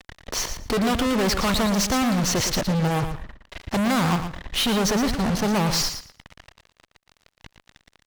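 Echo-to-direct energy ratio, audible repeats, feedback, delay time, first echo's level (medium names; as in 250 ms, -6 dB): -9.0 dB, 2, 17%, 115 ms, -9.0 dB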